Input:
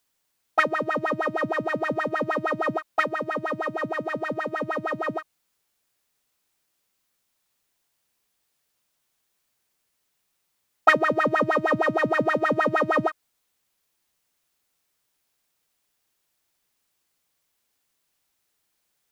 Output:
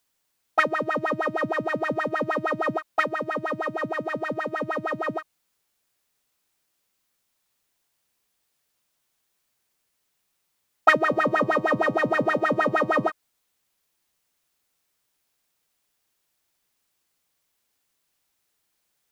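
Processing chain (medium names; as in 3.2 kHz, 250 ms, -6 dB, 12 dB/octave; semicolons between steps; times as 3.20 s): 11.00–13.10 s: de-hum 103 Hz, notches 11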